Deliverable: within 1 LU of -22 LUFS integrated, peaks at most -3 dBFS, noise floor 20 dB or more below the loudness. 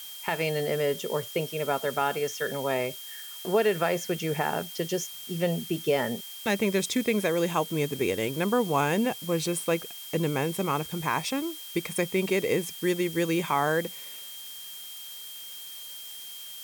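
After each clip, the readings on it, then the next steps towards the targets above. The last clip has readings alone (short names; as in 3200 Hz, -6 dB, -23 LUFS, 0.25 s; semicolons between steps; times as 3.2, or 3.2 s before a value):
steady tone 3200 Hz; tone level -43 dBFS; noise floor -42 dBFS; noise floor target -49 dBFS; loudness -28.5 LUFS; peak -12.5 dBFS; loudness target -22.0 LUFS
-> notch 3200 Hz, Q 30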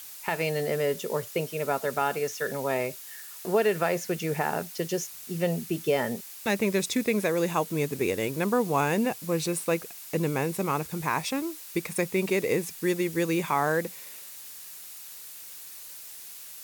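steady tone none; noise floor -44 dBFS; noise floor target -48 dBFS
-> denoiser 6 dB, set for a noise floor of -44 dBFS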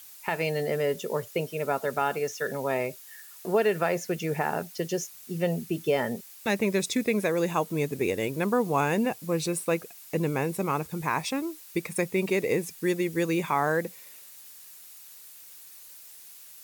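noise floor -48 dBFS; noise floor target -49 dBFS
-> denoiser 6 dB, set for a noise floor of -48 dBFS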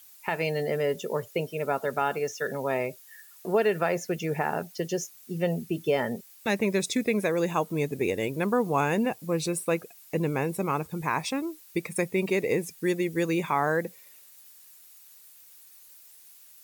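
noise floor -53 dBFS; loudness -28.5 LUFS; peak -13.0 dBFS; loudness target -22.0 LUFS
-> gain +6.5 dB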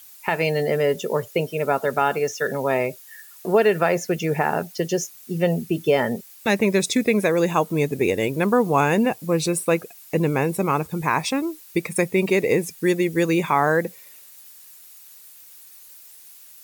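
loudness -22.0 LUFS; peak -6.5 dBFS; noise floor -46 dBFS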